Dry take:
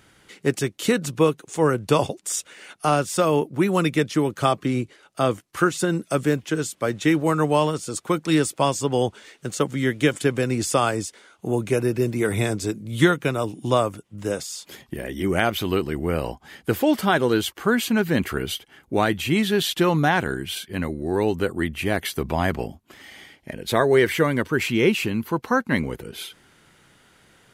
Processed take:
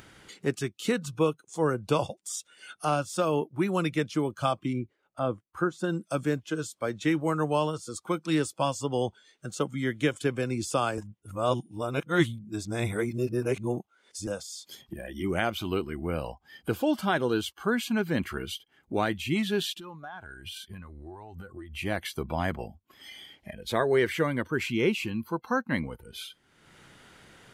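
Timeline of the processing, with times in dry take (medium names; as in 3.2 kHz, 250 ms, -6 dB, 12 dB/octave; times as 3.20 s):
4.73–5.84 s: treble shelf 2.3 kHz -11.5 dB
10.98–14.27 s: reverse
19.74–21.77 s: compression 8:1, threshold -32 dBFS
whole clip: spectral noise reduction 14 dB; treble shelf 10 kHz -8 dB; upward compressor, threshold -28 dBFS; trim -6.5 dB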